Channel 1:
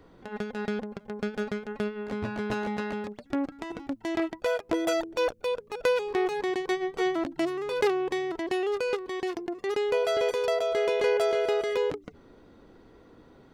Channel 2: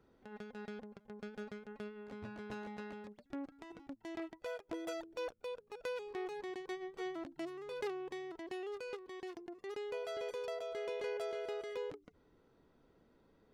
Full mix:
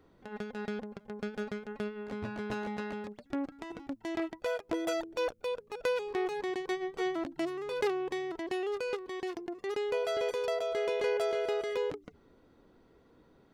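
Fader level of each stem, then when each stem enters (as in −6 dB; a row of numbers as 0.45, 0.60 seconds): −9.5, 0.0 decibels; 0.00, 0.00 seconds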